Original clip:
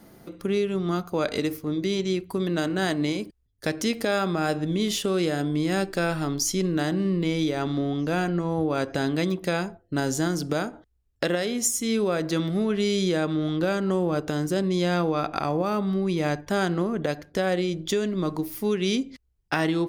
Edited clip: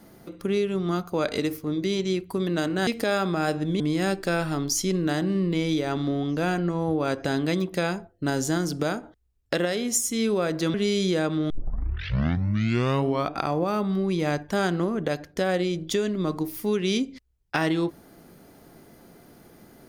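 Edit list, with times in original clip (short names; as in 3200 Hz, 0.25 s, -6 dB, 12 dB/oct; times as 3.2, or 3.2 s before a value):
2.87–3.88 cut
4.81–5.5 cut
12.44–12.72 cut
13.48 tape start 1.86 s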